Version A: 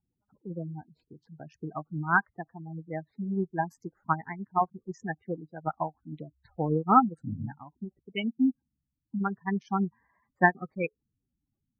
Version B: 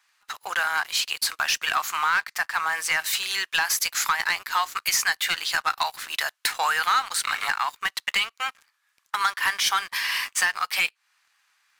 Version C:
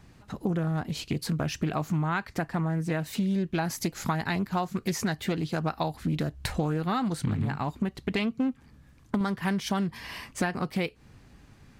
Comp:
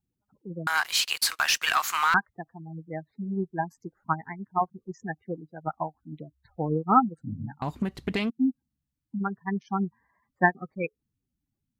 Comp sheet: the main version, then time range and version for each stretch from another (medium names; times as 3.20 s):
A
0.67–2.14 s: from B
7.62–8.30 s: from C